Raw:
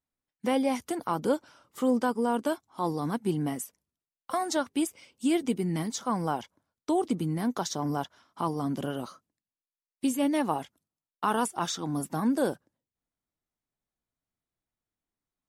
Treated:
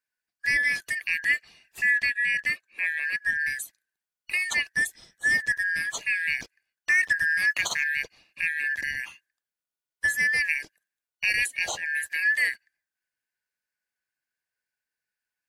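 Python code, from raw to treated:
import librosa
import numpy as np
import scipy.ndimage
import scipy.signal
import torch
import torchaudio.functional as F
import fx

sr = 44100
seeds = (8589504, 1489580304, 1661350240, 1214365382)

y = fx.band_shuffle(x, sr, order='3142')
y = fx.high_shelf(y, sr, hz=6100.0, db=-6.0, at=(1.98, 3.4))
y = fx.leveller(y, sr, passes=1, at=(6.4, 7.84))
y = y * librosa.db_to_amplitude(2.0)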